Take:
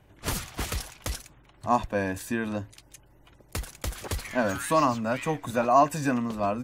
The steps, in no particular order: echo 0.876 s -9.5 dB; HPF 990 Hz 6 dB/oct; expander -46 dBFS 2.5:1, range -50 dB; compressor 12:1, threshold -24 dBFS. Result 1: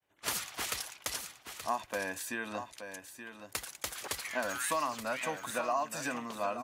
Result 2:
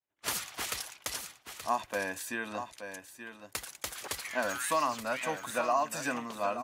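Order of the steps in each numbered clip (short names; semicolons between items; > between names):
compressor > echo > expander > HPF; HPF > compressor > echo > expander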